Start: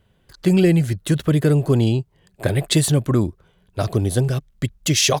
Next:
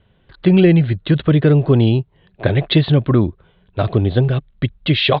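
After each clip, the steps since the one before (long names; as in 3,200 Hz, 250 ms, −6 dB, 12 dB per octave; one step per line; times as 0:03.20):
Butterworth low-pass 4,000 Hz 72 dB per octave
level +4 dB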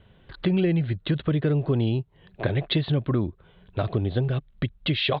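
downward compressor 2 to 1, threshold −32 dBFS, peak gain reduction 13.5 dB
level +1.5 dB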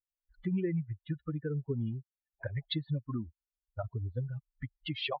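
spectral dynamics exaggerated over time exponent 3
level −5.5 dB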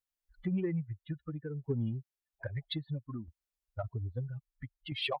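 shaped tremolo saw down 0.61 Hz, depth 60%
in parallel at −10.5 dB: soft clipping −34.5 dBFS, distortion −12 dB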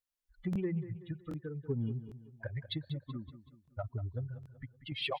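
repeating echo 189 ms, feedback 44%, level −13 dB
regular buffer underruns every 0.78 s, samples 1,024, repeat, from 0:00.51
level −1.5 dB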